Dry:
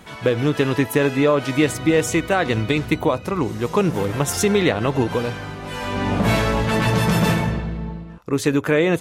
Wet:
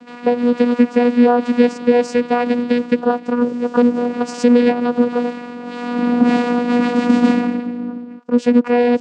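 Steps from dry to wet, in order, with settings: vocoder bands 8, saw 242 Hz; trim +5 dB

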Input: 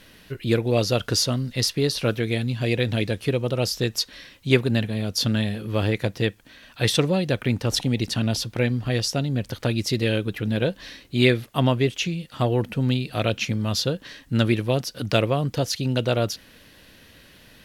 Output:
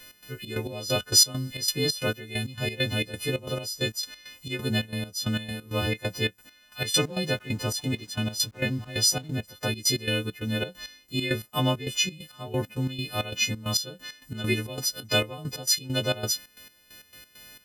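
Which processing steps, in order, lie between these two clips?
partials quantised in pitch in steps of 3 st; trance gate "x.xx.x..x.x.x" 134 bpm -12 dB; 6.82–9.34 s: hysteresis with a dead band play -44 dBFS; trim -4.5 dB

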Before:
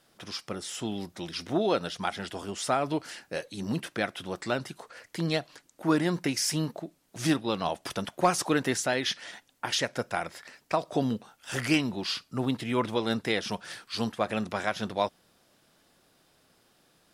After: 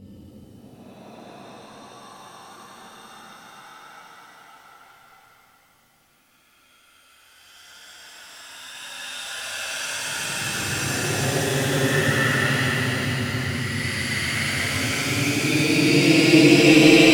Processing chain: Paulstretch 30×, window 0.05 s, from 11.18 s; pitch-shifted reverb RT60 3.3 s, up +7 st, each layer -8 dB, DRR -8 dB; trim -1 dB

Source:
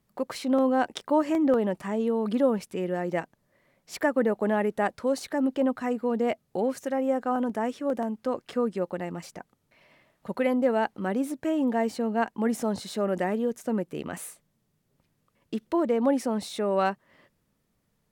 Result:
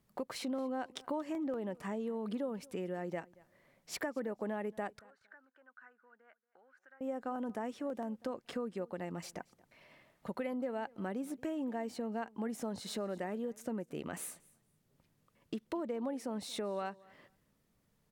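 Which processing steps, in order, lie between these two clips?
compression 4:1, threshold -35 dBFS, peak gain reduction 14.5 dB; 4.99–7.01 s: band-pass filter 1.5 kHz, Q 9.5; feedback delay 230 ms, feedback 18%, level -23.5 dB; trim -2 dB

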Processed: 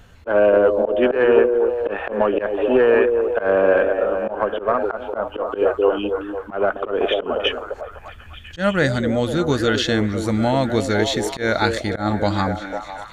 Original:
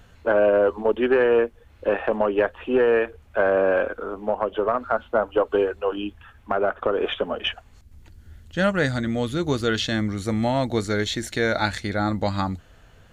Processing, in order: repeats whose band climbs or falls 250 ms, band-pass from 390 Hz, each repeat 0.7 oct, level -3 dB; slow attack 116 ms; trim +3.5 dB

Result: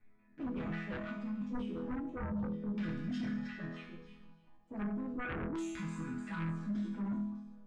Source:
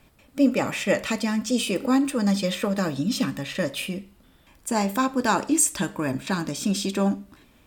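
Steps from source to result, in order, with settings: local Wiener filter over 15 samples; on a send: feedback echo behind a high-pass 300 ms, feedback 63%, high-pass 3.9 kHz, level -6 dB; on the sum: transient shaper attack -2 dB, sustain +8 dB; touch-sensitive flanger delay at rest 9.8 ms, full sweep at -18.5 dBFS; chord resonator E3 major, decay 0.84 s; LFO low-pass saw down 0.36 Hz 470–2400 Hz; dynamic bell 1.9 kHz, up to -4 dB, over -59 dBFS, Q 0.73; sine folder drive 14 dB, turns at -28 dBFS; peaking EQ 690 Hz -13 dB 1.8 oct; trim -1.5 dB

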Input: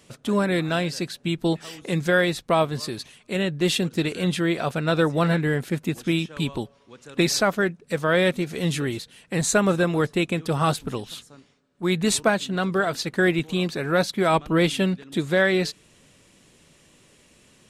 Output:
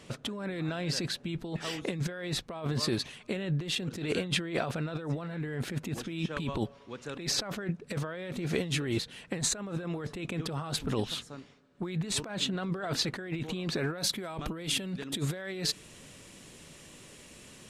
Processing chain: treble shelf 7.3 kHz -11.5 dB, from 13.98 s +2.5 dB; compressor with a negative ratio -31 dBFS, ratio -1; trim -3 dB

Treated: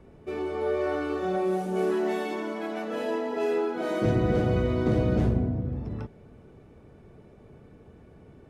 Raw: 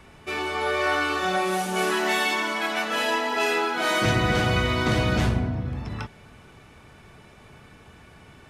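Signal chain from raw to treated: FFT filter 120 Hz 0 dB, 470 Hz +4 dB, 930 Hz -9 dB, 3 kHz -16 dB; trim -1.5 dB

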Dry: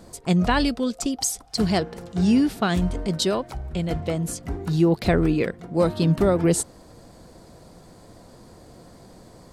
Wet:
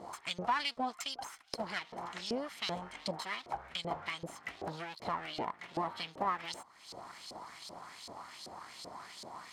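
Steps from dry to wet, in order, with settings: comb filter that takes the minimum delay 0.95 ms; treble shelf 4 kHz +11.5 dB; compression 6:1, threshold -34 dBFS, peak gain reduction 19 dB; LFO band-pass saw up 2.6 Hz 480–4700 Hz; trim +10.5 dB

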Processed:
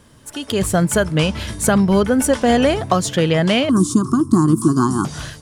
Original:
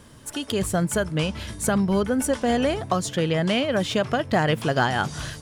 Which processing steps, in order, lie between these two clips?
3.69–5.05 s: FFT filter 110 Hz 0 dB, 340 Hz +14 dB, 530 Hz -27 dB, 800 Hz -15 dB, 1.1 kHz +10 dB, 1.9 kHz -29 dB, 2.7 kHz -27 dB, 4.4 kHz -6 dB, 9.1 kHz +15 dB, 15 kHz -5 dB; level rider; trim -1 dB

